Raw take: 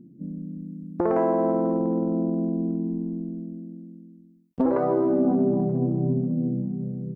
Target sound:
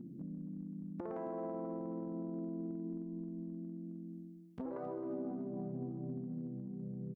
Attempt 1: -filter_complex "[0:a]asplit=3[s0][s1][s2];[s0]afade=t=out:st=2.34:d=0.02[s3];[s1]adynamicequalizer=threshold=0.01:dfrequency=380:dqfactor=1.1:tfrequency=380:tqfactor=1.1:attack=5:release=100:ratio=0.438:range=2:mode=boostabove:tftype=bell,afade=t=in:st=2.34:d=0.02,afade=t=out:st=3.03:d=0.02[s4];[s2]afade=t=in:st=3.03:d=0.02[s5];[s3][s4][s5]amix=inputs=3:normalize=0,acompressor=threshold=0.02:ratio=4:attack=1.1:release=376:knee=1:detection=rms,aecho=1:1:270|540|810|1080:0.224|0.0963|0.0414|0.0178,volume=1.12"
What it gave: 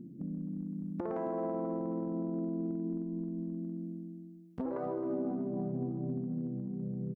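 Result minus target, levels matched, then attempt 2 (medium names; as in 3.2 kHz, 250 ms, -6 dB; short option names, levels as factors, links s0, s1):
compression: peak gain reduction -6 dB
-filter_complex "[0:a]asplit=3[s0][s1][s2];[s0]afade=t=out:st=2.34:d=0.02[s3];[s1]adynamicequalizer=threshold=0.01:dfrequency=380:dqfactor=1.1:tfrequency=380:tqfactor=1.1:attack=5:release=100:ratio=0.438:range=2:mode=boostabove:tftype=bell,afade=t=in:st=2.34:d=0.02,afade=t=out:st=3.03:d=0.02[s4];[s2]afade=t=in:st=3.03:d=0.02[s5];[s3][s4][s5]amix=inputs=3:normalize=0,acompressor=threshold=0.00794:ratio=4:attack=1.1:release=376:knee=1:detection=rms,aecho=1:1:270|540|810|1080:0.224|0.0963|0.0414|0.0178,volume=1.12"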